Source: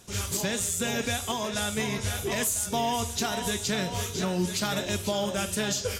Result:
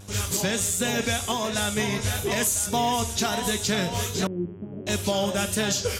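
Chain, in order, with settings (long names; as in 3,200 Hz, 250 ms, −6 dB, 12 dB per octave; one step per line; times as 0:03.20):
0:04.27–0:04.87: transistor ladder low-pass 400 Hz, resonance 50%
pitch vibrato 1.5 Hz 42 cents
hum with harmonics 100 Hz, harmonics 33, −50 dBFS −8 dB per octave
level +3.5 dB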